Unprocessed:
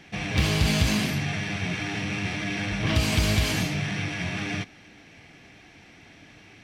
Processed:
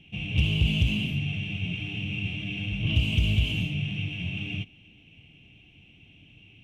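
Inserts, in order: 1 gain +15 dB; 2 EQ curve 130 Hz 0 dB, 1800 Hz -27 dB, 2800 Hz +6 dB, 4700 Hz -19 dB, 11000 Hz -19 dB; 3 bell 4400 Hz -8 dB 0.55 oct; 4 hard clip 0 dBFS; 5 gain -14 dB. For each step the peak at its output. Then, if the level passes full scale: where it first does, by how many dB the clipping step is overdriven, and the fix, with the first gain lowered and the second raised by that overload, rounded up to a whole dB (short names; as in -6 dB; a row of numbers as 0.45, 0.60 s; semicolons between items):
+6.0, +5.5, +5.0, 0.0, -14.0 dBFS; step 1, 5.0 dB; step 1 +10 dB, step 5 -9 dB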